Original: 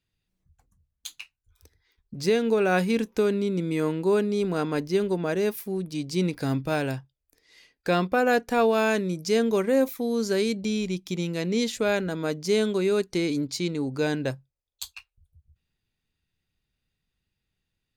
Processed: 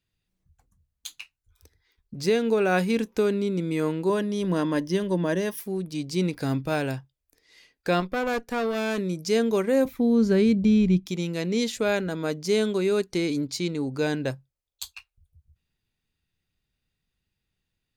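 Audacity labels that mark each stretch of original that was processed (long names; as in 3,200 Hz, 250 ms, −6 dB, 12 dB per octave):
4.090000	5.600000	EQ curve with evenly spaced ripples crests per octave 1.2, crest to trough 10 dB
8.000000	8.980000	tube saturation drive 21 dB, bias 0.75
9.850000	11.060000	bass and treble bass +14 dB, treble −11 dB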